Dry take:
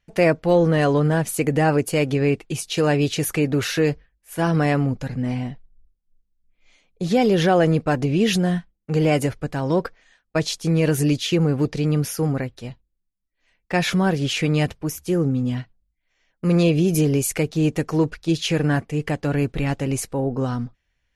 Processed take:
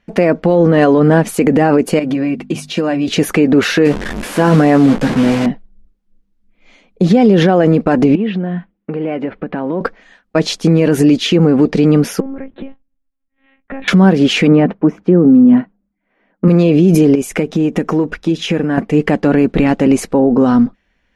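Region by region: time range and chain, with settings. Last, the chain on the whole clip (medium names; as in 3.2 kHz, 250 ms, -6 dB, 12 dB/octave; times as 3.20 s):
1.99–3.08 s: hum notches 50/100/150/200/250 Hz + compression 5:1, threshold -27 dBFS + comb of notches 430 Hz
3.85–5.46 s: one-bit delta coder 64 kbps, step -27 dBFS + doubling 14 ms -6 dB
8.15–9.81 s: compression 16:1, threshold -29 dBFS + low-pass 3.1 kHz 24 dB/octave + bass shelf 92 Hz -11 dB
12.20–13.88 s: compression 8:1, threshold -34 dBFS + distance through air 240 m + monotone LPC vocoder at 8 kHz 270 Hz
14.47–16.48 s: low-pass 1.6 kHz + resonant low shelf 120 Hz -12.5 dB, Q 1.5
17.15–18.78 s: band-stop 4.4 kHz, Q 6.9 + compression, threshold -26 dBFS
whole clip: low-pass 1.8 kHz 6 dB/octave; resonant low shelf 160 Hz -7 dB, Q 3; loudness maximiser +16 dB; trim -1 dB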